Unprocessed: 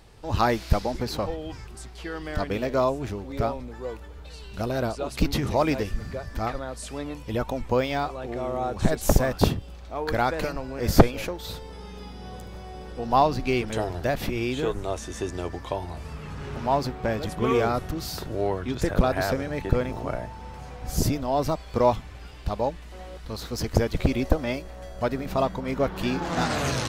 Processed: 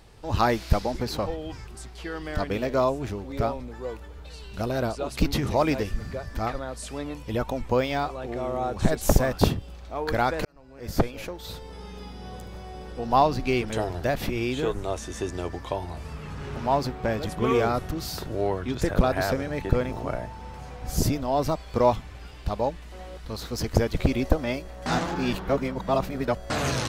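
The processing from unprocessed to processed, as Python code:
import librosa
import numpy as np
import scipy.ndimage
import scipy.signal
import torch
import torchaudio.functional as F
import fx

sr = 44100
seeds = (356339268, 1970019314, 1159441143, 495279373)

y = fx.edit(x, sr, fx.fade_in_span(start_s=10.45, length_s=1.36),
    fx.reverse_span(start_s=24.86, length_s=1.64), tone=tone)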